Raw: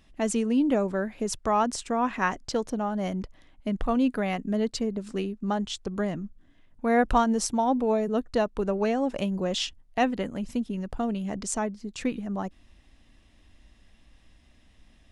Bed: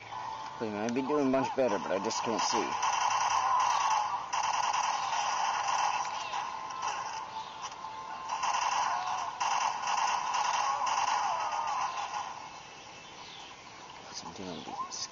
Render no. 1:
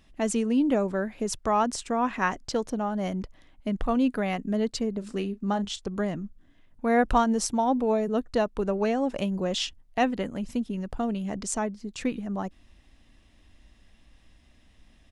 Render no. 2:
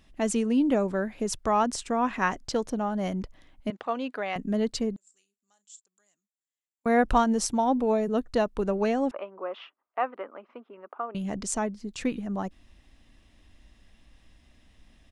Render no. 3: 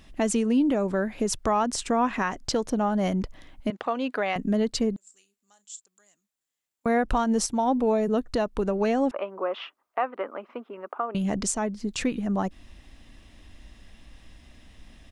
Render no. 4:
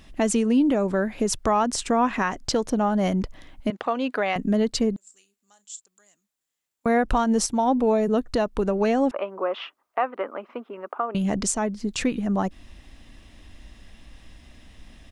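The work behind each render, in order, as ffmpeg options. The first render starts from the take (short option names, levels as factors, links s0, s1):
-filter_complex "[0:a]asplit=3[s0][s1][s2];[s0]afade=t=out:st=5.01:d=0.02[s3];[s1]asplit=2[s4][s5];[s5]adelay=35,volume=0.224[s6];[s4][s6]amix=inputs=2:normalize=0,afade=t=in:st=5.01:d=0.02,afade=t=out:st=5.82:d=0.02[s7];[s2]afade=t=in:st=5.82:d=0.02[s8];[s3][s7][s8]amix=inputs=3:normalize=0"
-filter_complex "[0:a]asettb=1/sr,asplit=3[s0][s1][s2];[s0]atrim=end=3.704[s3];[s1]atrim=start=3.7:end=4.36,asetpts=PTS-STARTPTS,afade=t=in:d=0.004:c=qsin,afade=t=out:st=0.656:d=0.004:c=qsin,highpass=480,lowpass=4900[s4];[s2]atrim=start=4.356[s5];[s3][s4]acrossfade=d=0.004:c1=hsin:c2=qsin[s6];[s6][s5]acrossfade=d=0.004:c1=qsin:c2=hsin,asettb=1/sr,asplit=3[s7][s8][s9];[s7]atrim=end=4.964[s10];[s8]atrim=start=4.96:end=6.86,asetpts=PTS-STARTPTS,afade=t=in:d=0.004:c=qsin,afade=t=out:st=1.896:d=0.004:c=qsin,bandpass=f=7400:t=q:w=12[s11];[s9]atrim=start=6.856[s12];[s10][s11]acrossfade=d=0.004:c1=hsin:c2=qsin[s13];[s13][s12]acrossfade=d=0.004:c1=qsin:c2=hsin,asettb=1/sr,asplit=3[s14][s15][s16];[s14]atrim=end=9.114[s17];[s15]atrim=start=9.11:end=11.15,asetpts=PTS-STARTPTS,afade=t=in:d=0.004:c=qsin,afade=t=out:st=2.036:d=0.004:c=qsin,highpass=f=440:w=0.5412,highpass=f=440:w=1.3066,equalizer=f=480:t=q:w=4:g=-5,equalizer=f=720:t=q:w=4:g=-3,equalizer=f=1200:t=q:w=4:g=9,equalizer=f=1800:t=q:w=4:g=-7,lowpass=f=2000:w=0.5412,lowpass=f=2000:w=1.3066[s18];[s16]atrim=start=11.146[s19];[s17][s18]acrossfade=d=0.004:c1=hsin:c2=qsin[s20];[s20][s19]acrossfade=d=0.004:c1=qsin:c2=hsin"
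-filter_complex "[0:a]asplit=2[s0][s1];[s1]acompressor=threshold=0.0224:ratio=6,volume=1.41[s2];[s0][s2]amix=inputs=2:normalize=0,alimiter=limit=0.178:level=0:latency=1:release=225"
-af "volume=1.33"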